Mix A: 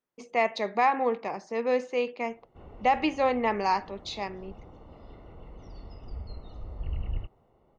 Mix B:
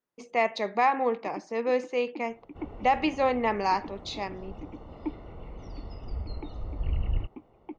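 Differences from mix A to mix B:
first sound: unmuted
second sound +4.0 dB

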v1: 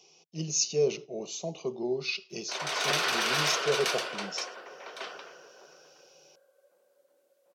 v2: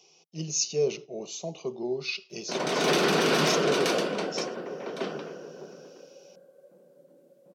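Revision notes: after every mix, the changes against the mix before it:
background: remove high-pass filter 960 Hz 12 dB per octave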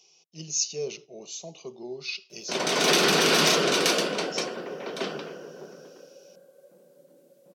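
speech −7.0 dB
master: add high-shelf EQ 2,200 Hz +9 dB

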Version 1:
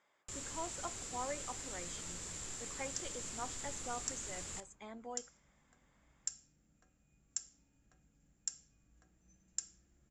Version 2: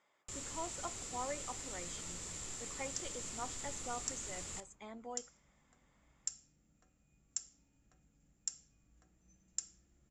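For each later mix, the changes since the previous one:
master: add notch filter 1,600 Hz, Q 14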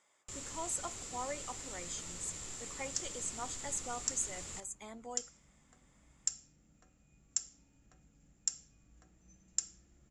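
speech: remove high-frequency loss of the air 160 metres
second sound +5.5 dB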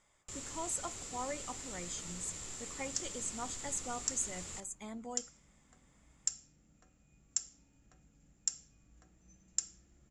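speech: remove high-pass filter 310 Hz 12 dB per octave

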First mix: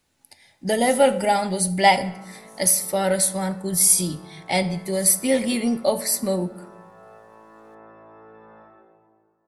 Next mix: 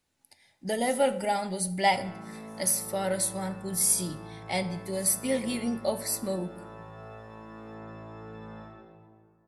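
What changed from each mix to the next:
speech −8.0 dB
background: remove three-way crossover with the lows and the highs turned down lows −16 dB, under 300 Hz, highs −21 dB, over 2,300 Hz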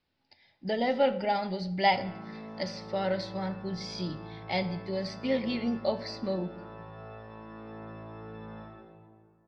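master: add Chebyshev low-pass filter 5,000 Hz, order 5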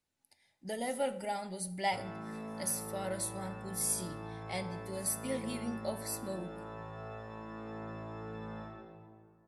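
speech −9.0 dB
master: remove Chebyshev low-pass filter 5,000 Hz, order 5

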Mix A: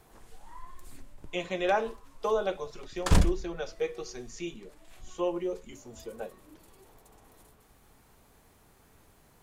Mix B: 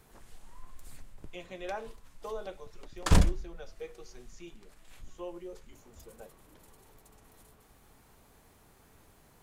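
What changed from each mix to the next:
speech −11.5 dB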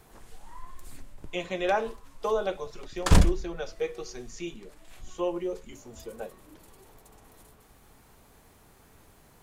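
speech +12.0 dB
background +3.5 dB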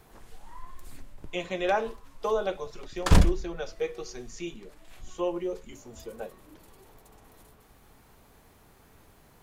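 background: add parametric band 8,400 Hz −3.5 dB 1 octave

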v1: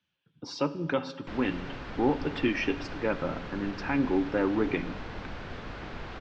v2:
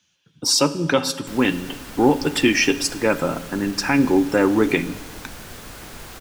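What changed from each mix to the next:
speech +9.5 dB
master: remove Gaussian smoothing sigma 2.4 samples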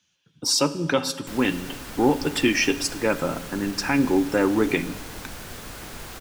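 speech −3.5 dB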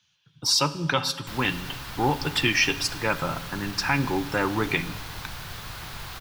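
master: add octave-band graphic EQ 125/250/500/1,000/4,000/8,000 Hz +7/−9/−6/+4/+5/−6 dB

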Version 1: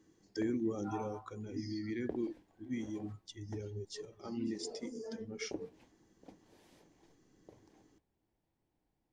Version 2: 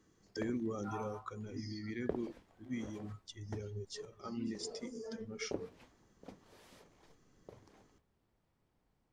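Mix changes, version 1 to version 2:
background +5.5 dB
master: add thirty-one-band graphic EQ 315 Hz −8 dB, 800 Hz −4 dB, 1,250 Hz +7 dB

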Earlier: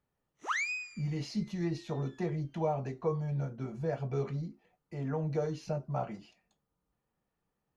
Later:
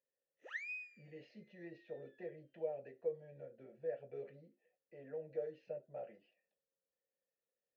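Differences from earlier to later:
speech: add high-frequency loss of the air 150 metres
master: add formant filter e

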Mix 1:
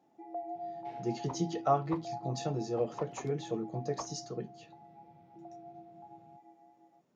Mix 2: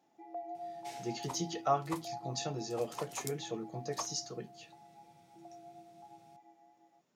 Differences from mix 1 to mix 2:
second sound: remove high-frequency loss of the air 310 metres
master: add tilt shelving filter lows −5.5 dB, about 1,200 Hz

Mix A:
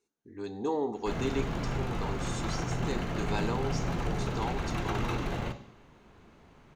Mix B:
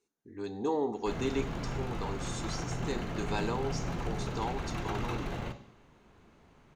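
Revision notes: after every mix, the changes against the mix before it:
background −3.5 dB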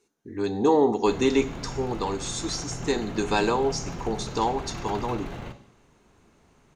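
speech +11.0 dB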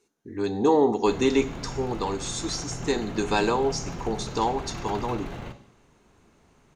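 nothing changed

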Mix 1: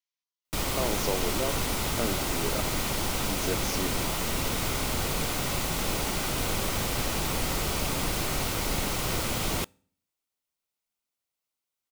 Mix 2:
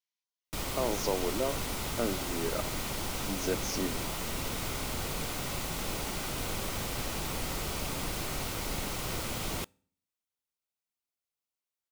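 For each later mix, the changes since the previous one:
background −6.0 dB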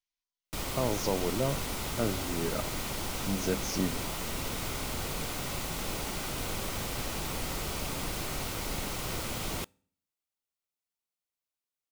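speech: remove high-pass filter 240 Hz 24 dB per octave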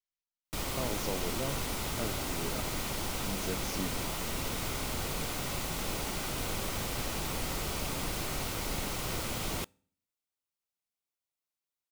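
speech −7.0 dB

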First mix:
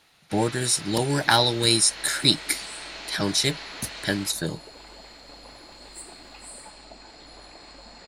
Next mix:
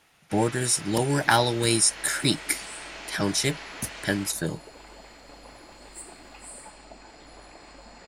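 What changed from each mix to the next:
master: add parametric band 4,100 Hz −9.5 dB 0.39 octaves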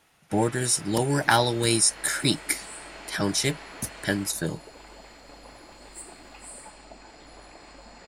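first sound: add high-shelf EQ 2,400 Hz −10 dB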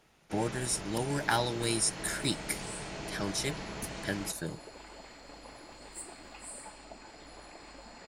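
speech −8.5 dB
first sound: remove resonant band-pass 1,700 Hz, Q 0.77
reverb: off

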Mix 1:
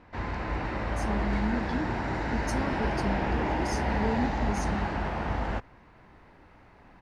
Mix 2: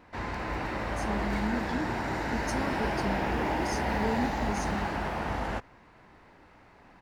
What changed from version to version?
background: remove high-frequency loss of the air 73 metres
master: add low-shelf EQ 130 Hz −6 dB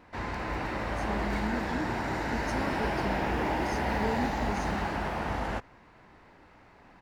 speech: add bass and treble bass −4 dB, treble −8 dB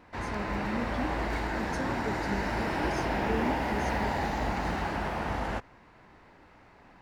speech: entry −0.75 s

